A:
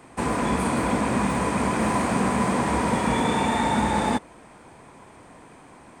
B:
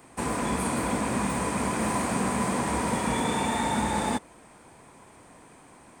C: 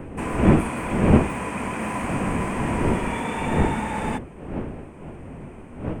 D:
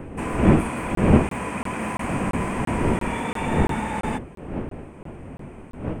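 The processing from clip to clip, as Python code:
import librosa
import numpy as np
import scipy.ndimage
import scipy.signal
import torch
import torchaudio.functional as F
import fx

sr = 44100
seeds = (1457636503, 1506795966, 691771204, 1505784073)

y1 = fx.high_shelf(x, sr, hz=7300.0, db=11.0)
y1 = y1 * 10.0 ** (-4.5 / 20.0)
y2 = fx.dmg_wind(y1, sr, seeds[0], corner_hz=320.0, level_db=-24.0)
y2 = fx.high_shelf_res(y2, sr, hz=3300.0, db=-6.0, q=3.0)
y2 = y2 * 10.0 ** (-1.0 / 20.0)
y3 = fx.buffer_crackle(y2, sr, first_s=0.95, period_s=0.34, block=1024, kind='zero')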